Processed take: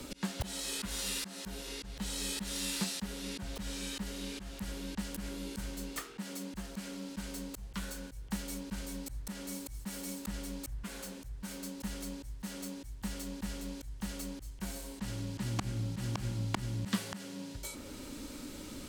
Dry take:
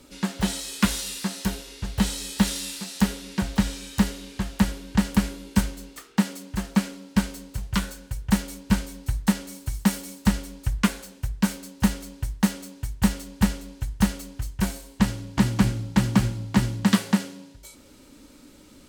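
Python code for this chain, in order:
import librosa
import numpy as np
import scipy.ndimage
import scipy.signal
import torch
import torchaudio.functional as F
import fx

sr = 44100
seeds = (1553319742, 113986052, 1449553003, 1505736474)

y = fx.auto_swell(x, sr, attack_ms=396.0)
y = fx.band_squash(y, sr, depth_pct=40)
y = y * 10.0 ** (2.5 / 20.0)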